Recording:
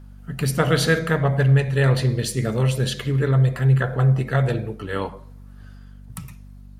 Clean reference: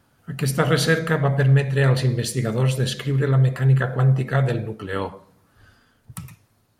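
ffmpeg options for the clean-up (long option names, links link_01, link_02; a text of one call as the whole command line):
ffmpeg -i in.wav -af "bandreject=frequency=48.7:width_type=h:width=4,bandreject=frequency=97.4:width_type=h:width=4,bandreject=frequency=146.1:width_type=h:width=4,bandreject=frequency=194.8:width_type=h:width=4,bandreject=frequency=243.5:width_type=h:width=4" out.wav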